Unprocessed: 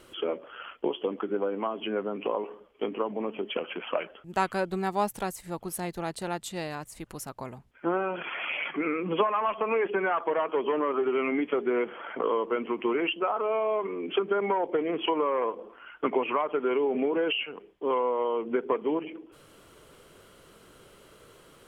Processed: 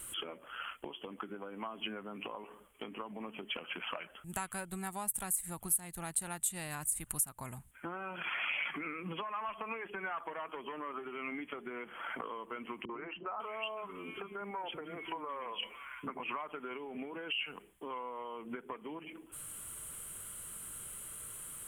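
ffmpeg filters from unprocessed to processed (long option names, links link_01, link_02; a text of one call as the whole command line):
ffmpeg -i in.wav -filter_complex "[0:a]asettb=1/sr,asplit=3[link_01][link_02][link_03];[link_01]atrim=end=12.854[link_04];[link_02]atrim=start=12.85:end=16.2,asetpts=PTS-STARTPTS,afade=type=in:duration=0.004:curve=qsin,afade=type=out:start_time=3.346:duration=0.004:curve=qsin,acrossover=split=300|2000[link_05][link_06][link_07];[link_06]adelay=40[link_08];[link_07]adelay=550[link_09];[link_05][link_08][link_09]amix=inputs=3:normalize=0,atrim=end_sample=147735[link_10];[link_03]atrim=start=16.196[link_11];[link_04][link_10]acrossfade=duration=0.004:curve1=hsin:curve2=qsin[link_12];[link_12][link_11]acrossfade=duration=0.004:curve1=qsin:curve2=hsin,highshelf=frequency=6900:width_type=q:width=3:gain=11.5,acompressor=threshold=-34dB:ratio=5,equalizer=frequency=440:width_type=o:width=1.9:gain=-14,volume=3.5dB" out.wav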